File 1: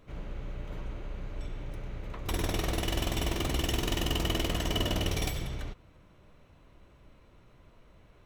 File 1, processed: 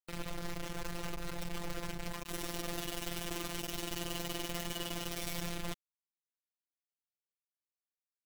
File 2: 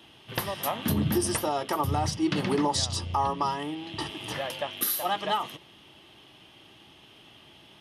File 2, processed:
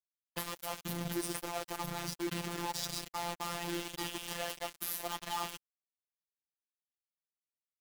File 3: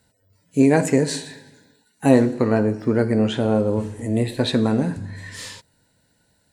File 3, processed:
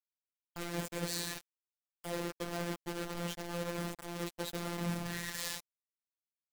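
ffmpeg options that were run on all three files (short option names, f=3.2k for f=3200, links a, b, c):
-af "aecho=1:1:64|128|192|256:0.133|0.068|0.0347|0.0177,areverse,acompressor=threshold=-34dB:ratio=8,areverse,acrusher=bits=5:mix=0:aa=0.000001,afftfilt=real='hypot(re,im)*cos(PI*b)':imag='0':win_size=1024:overlap=0.75,acompressor=mode=upward:threshold=-43dB:ratio=2.5,volume=1dB"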